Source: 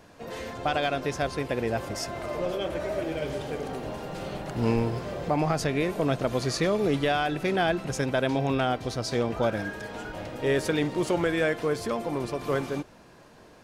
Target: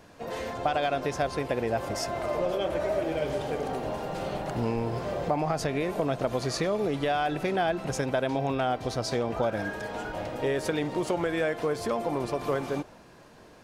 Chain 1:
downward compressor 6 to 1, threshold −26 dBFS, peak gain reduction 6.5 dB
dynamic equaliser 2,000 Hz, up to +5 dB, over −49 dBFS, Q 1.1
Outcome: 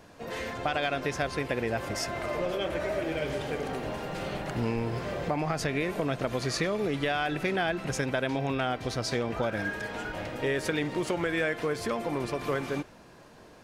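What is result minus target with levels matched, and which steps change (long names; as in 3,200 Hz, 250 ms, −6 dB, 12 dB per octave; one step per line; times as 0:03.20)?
2,000 Hz band +4.5 dB
change: dynamic equaliser 740 Hz, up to +5 dB, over −49 dBFS, Q 1.1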